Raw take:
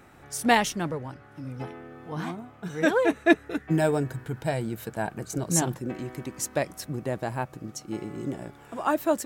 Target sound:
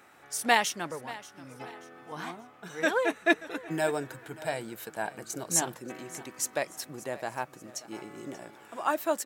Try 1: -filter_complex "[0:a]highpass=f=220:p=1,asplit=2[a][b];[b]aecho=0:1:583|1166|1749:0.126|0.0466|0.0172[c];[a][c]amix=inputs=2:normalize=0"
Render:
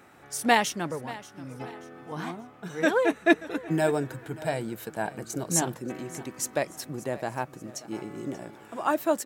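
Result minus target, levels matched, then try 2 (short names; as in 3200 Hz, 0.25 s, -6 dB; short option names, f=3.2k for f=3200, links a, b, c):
250 Hz band +4.0 dB
-filter_complex "[0:a]highpass=f=740:p=1,asplit=2[a][b];[b]aecho=0:1:583|1166|1749:0.126|0.0466|0.0172[c];[a][c]amix=inputs=2:normalize=0"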